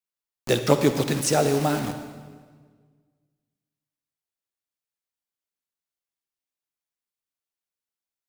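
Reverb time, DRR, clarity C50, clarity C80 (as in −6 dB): 1.6 s, 8.0 dB, 8.5 dB, 9.5 dB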